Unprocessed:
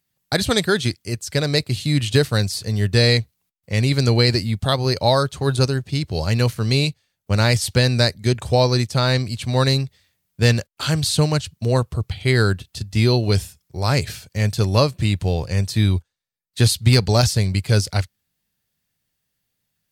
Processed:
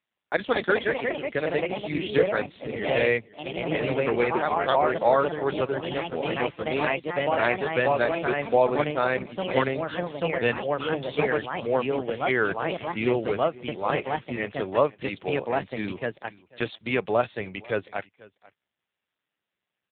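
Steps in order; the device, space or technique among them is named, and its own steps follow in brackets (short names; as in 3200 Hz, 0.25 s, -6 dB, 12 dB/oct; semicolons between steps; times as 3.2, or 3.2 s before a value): 10.93–11.38 HPF 74 Hz 24 dB/oct; echoes that change speed 0.249 s, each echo +2 st, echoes 3; satellite phone (BPF 370–3200 Hz; echo 0.492 s -22.5 dB; gain -1 dB; AMR-NB 5.9 kbps 8000 Hz)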